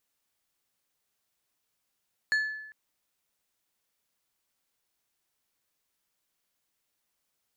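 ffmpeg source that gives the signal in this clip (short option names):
-f lavfi -i "aevalsrc='0.0891*pow(10,-3*t/0.92)*sin(2*PI*1730*t)+0.0251*pow(10,-3*t/0.484)*sin(2*PI*4325*t)+0.00708*pow(10,-3*t/0.349)*sin(2*PI*6920*t)+0.002*pow(10,-3*t/0.298)*sin(2*PI*8650*t)+0.000562*pow(10,-3*t/0.248)*sin(2*PI*11245*t)':d=0.4:s=44100"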